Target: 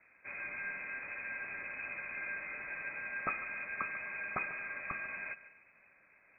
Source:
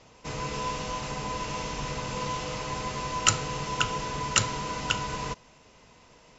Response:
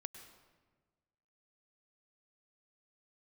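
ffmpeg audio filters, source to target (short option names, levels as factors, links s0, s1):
-filter_complex "[0:a]asplit=2[s0][s1];[1:a]atrim=start_sample=2205,asetrate=52920,aresample=44100,adelay=145[s2];[s1][s2]afir=irnorm=-1:irlink=0,volume=0.355[s3];[s0][s3]amix=inputs=2:normalize=0,acrusher=bits=8:mix=0:aa=0.5,lowpass=f=2200:t=q:w=0.5098,lowpass=f=2200:t=q:w=0.6013,lowpass=f=2200:t=q:w=0.9,lowpass=f=2200:t=q:w=2.563,afreqshift=-2600,equalizer=f=200:w=1.3:g=5.5,volume=0.355"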